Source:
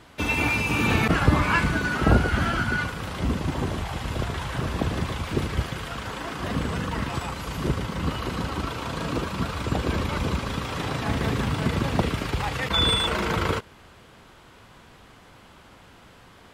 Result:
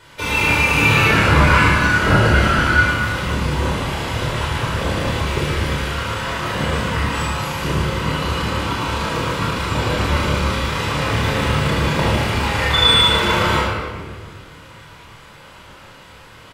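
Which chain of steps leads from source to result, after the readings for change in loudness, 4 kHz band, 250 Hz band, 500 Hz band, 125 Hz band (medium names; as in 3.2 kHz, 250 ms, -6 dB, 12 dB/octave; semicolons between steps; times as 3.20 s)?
+8.5 dB, +10.5 dB, +4.5 dB, +7.5 dB, +7.0 dB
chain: bass shelf 500 Hz -9.5 dB; doubling 28 ms -5 dB; simulated room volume 2400 m³, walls mixed, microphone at 4.8 m; trim +2.5 dB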